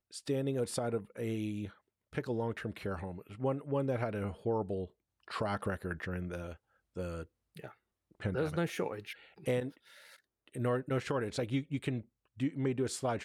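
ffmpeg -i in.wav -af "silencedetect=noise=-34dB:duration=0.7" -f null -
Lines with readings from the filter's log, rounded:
silence_start: 9.68
silence_end: 10.56 | silence_duration: 0.88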